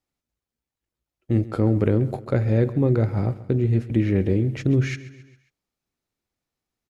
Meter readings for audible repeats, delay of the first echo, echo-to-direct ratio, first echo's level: 3, 135 ms, -16.0 dB, -17.0 dB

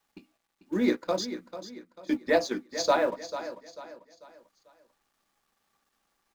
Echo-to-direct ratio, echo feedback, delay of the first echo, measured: -11.5 dB, 38%, 443 ms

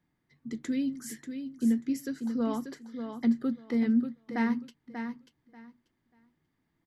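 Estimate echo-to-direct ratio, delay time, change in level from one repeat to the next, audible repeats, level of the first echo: -8.0 dB, 588 ms, -15.0 dB, 2, -8.0 dB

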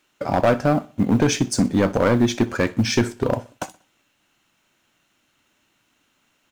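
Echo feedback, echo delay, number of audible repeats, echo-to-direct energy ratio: 41%, 62 ms, 2, -19.5 dB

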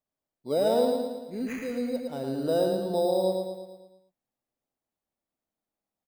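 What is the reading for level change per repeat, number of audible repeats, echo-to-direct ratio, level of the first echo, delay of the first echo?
-5.5 dB, 6, -2.5 dB, -4.0 dB, 112 ms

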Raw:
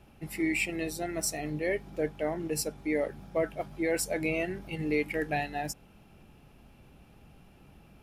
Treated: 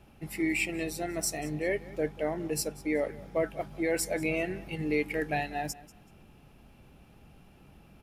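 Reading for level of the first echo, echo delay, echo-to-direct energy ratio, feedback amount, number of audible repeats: -19.5 dB, 189 ms, -19.5 dB, 24%, 2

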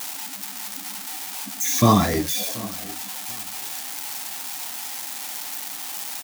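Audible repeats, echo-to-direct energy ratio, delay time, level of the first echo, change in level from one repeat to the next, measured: 2, -20.5 dB, 732 ms, -21.0 dB, -11.0 dB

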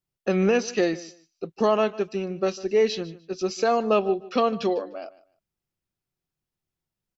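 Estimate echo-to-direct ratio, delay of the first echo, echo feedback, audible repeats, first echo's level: -19.0 dB, 150 ms, 20%, 2, -19.0 dB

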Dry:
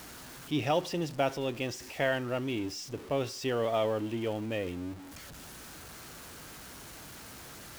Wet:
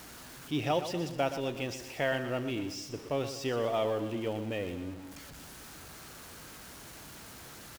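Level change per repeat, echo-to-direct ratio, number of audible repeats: -6.0 dB, -10.0 dB, 4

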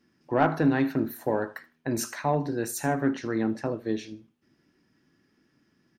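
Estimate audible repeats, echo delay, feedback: 2, 78 ms, 21%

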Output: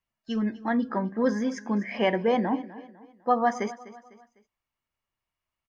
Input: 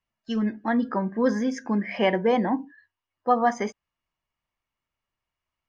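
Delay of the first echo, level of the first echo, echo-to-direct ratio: 251 ms, -17.5 dB, -16.5 dB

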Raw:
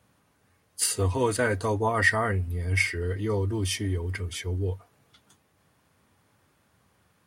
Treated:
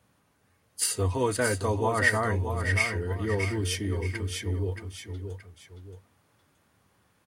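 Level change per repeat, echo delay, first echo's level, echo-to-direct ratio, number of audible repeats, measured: -8.0 dB, 625 ms, -7.5 dB, -7.0 dB, 2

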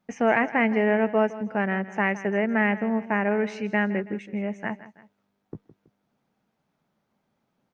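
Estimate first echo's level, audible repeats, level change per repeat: -16.0 dB, 2, -7.0 dB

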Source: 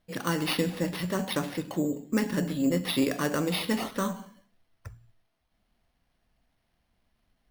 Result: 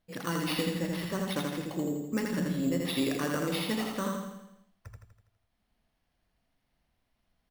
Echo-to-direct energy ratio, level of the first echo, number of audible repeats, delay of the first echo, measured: -1.5 dB, -3.0 dB, 6, 82 ms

